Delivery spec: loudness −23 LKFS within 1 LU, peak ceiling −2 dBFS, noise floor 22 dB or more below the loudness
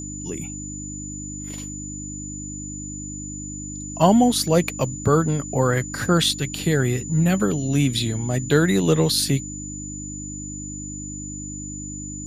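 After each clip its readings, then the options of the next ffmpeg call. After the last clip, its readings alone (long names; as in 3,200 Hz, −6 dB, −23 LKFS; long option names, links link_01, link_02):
mains hum 50 Hz; hum harmonics up to 300 Hz; level of the hum −33 dBFS; interfering tone 7,000 Hz; level of the tone −34 dBFS; integrated loudness −23.0 LKFS; sample peak −2.5 dBFS; target loudness −23.0 LKFS
→ -af "bandreject=frequency=50:width_type=h:width=4,bandreject=frequency=100:width_type=h:width=4,bandreject=frequency=150:width_type=h:width=4,bandreject=frequency=200:width_type=h:width=4,bandreject=frequency=250:width_type=h:width=4,bandreject=frequency=300:width_type=h:width=4"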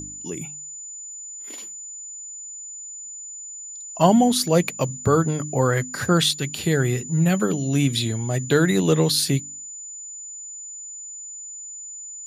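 mains hum none found; interfering tone 7,000 Hz; level of the tone −34 dBFS
→ -af "bandreject=frequency=7000:width=30"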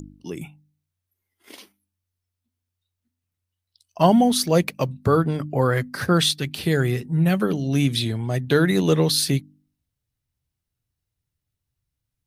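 interfering tone none found; integrated loudness −21.0 LKFS; sample peak −2.5 dBFS; target loudness −23.0 LKFS
→ -af "volume=-2dB"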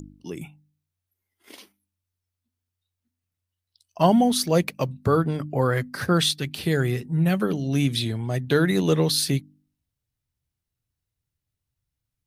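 integrated loudness −23.0 LKFS; sample peak −4.5 dBFS; background noise floor −85 dBFS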